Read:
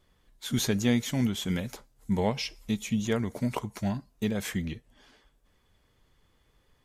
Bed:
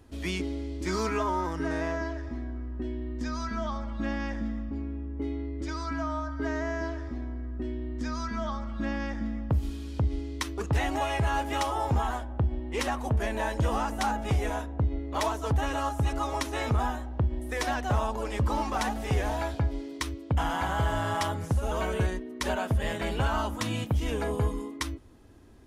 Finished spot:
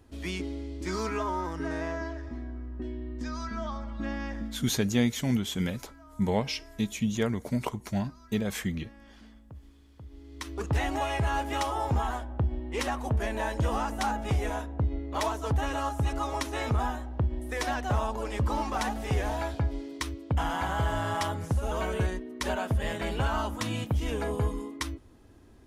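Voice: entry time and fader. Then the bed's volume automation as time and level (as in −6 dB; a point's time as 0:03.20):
4.10 s, 0.0 dB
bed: 0:04.42 −2.5 dB
0:04.83 −21 dB
0:10.03 −21 dB
0:10.58 −1 dB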